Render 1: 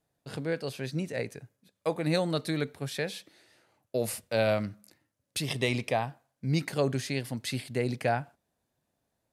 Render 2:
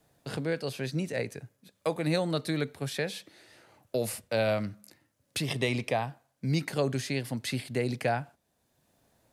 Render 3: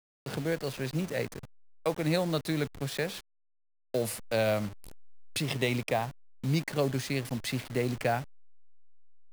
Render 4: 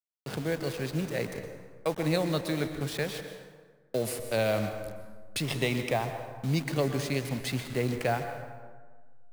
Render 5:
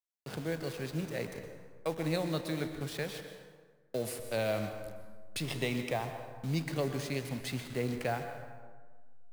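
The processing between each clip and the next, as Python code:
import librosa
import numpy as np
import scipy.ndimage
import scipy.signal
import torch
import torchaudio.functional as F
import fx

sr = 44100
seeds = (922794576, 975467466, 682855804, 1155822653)

y1 = fx.band_squash(x, sr, depth_pct=40)
y2 = fx.delta_hold(y1, sr, step_db=-38.0)
y3 = fx.rev_plate(y2, sr, seeds[0], rt60_s=1.5, hf_ratio=0.55, predelay_ms=110, drr_db=7.5)
y4 = fx.comb_fb(y3, sr, f0_hz=81.0, decay_s=0.77, harmonics='all', damping=0.0, mix_pct=50)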